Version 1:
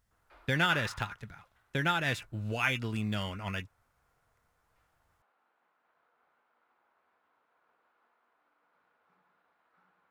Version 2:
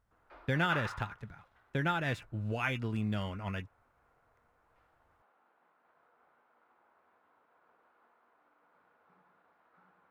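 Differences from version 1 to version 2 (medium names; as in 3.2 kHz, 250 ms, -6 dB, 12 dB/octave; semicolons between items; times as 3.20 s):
background +6.5 dB; master: add treble shelf 2.1 kHz -10.5 dB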